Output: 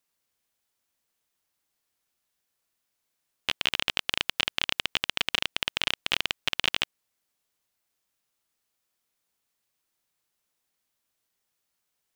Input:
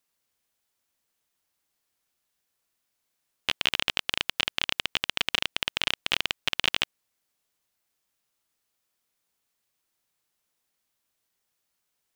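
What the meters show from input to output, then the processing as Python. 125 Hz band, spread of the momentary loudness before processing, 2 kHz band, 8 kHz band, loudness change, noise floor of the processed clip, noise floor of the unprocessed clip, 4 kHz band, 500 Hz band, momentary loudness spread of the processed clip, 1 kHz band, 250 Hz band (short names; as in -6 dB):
-0.5 dB, 3 LU, -0.5 dB, -0.5 dB, -0.5 dB, -80 dBFS, -79 dBFS, -0.5 dB, -0.5 dB, 3 LU, -0.5 dB, -0.5 dB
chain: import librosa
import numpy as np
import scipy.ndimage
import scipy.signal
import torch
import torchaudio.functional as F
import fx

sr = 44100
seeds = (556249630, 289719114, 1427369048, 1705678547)

y = fx.rider(x, sr, range_db=10, speed_s=0.5)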